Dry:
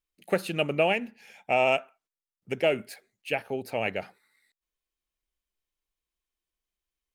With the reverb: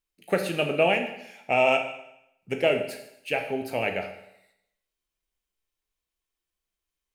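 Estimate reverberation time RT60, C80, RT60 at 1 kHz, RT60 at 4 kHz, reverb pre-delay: 0.80 s, 11.0 dB, 0.80 s, 0.80 s, 12 ms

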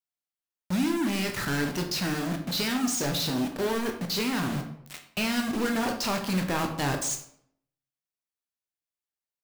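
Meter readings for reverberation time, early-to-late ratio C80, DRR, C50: 0.65 s, 11.5 dB, 4.0 dB, 8.0 dB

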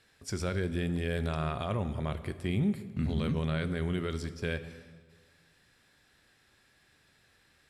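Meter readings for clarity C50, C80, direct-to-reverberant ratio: 13.0 dB, 14.5 dB, 11.0 dB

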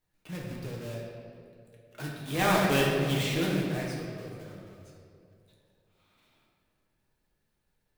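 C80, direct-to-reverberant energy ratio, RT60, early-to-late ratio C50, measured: 2.5 dB, -4.0 dB, 2.6 s, 1.0 dB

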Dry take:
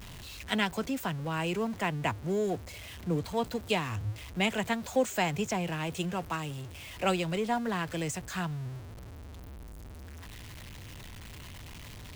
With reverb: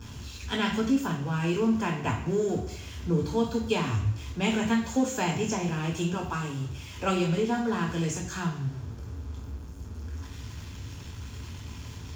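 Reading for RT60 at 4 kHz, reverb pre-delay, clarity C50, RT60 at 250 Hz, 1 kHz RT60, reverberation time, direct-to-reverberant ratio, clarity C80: 0.70 s, 7 ms, 7.0 dB, 0.70 s, 0.70 s, 0.70 s, 0.5 dB, 10.0 dB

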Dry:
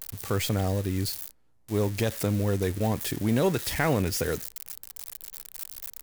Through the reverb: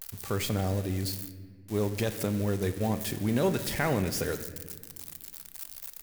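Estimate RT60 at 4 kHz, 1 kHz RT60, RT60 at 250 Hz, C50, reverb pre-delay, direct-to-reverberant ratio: 1.1 s, 1.3 s, 2.8 s, 12.0 dB, 5 ms, 9.0 dB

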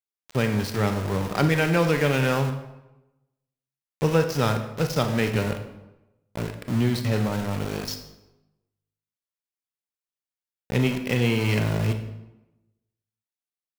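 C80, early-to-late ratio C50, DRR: 11.0 dB, 9.0 dB, 6.5 dB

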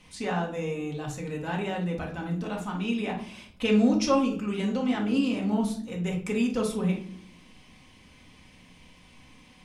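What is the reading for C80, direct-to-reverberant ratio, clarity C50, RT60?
13.5 dB, -1.0 dB, 7.5 dB, not exponential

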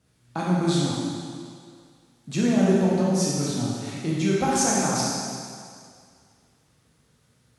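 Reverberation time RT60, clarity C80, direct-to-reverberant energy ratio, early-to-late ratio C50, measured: 2.2 s, 0.0 dB, -6.0 dB, -2.5 dB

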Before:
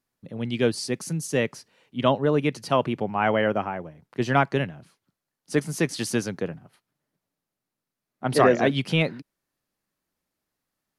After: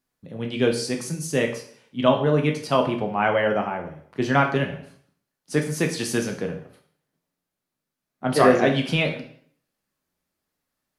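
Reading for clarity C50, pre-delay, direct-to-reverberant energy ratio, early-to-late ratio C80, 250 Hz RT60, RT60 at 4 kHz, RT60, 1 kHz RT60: 9.0 dB, 7 ms, 2.5 dB, 12.5 dB, 0.65 s, 0.55 s, 0.60 s, 0.60 s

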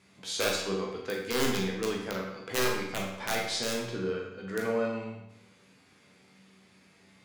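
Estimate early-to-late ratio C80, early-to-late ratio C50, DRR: 5.5 dB, 2.5 dB, -2.0 dB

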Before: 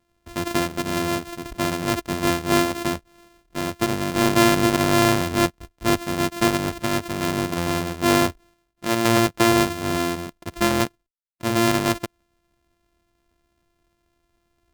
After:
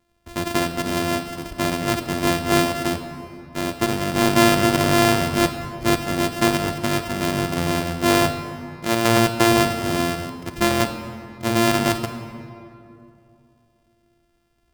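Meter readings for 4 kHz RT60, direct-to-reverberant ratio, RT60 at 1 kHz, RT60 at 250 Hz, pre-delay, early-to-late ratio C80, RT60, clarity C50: 1.6 s, 7.5 dB, 2.5 s, 2.9 s, 21 ms, 9.5 dB, 2.6 s, 8.5 dB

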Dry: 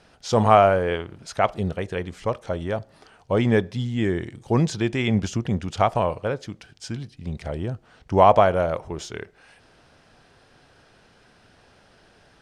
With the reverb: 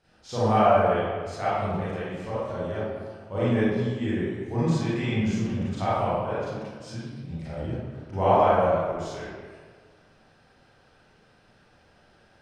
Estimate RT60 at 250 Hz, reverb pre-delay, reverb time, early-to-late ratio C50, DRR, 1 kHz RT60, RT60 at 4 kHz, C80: 1.6 s, 30 ms, 1.6 s, -4.5 dB, -11.5 dB, 1.6 s, 0.95 s, -1.0 dB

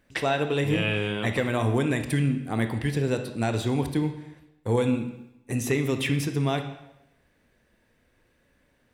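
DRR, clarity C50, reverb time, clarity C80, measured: 6.5 dB, 9.0 dB, 0.85 s, 11.5 dB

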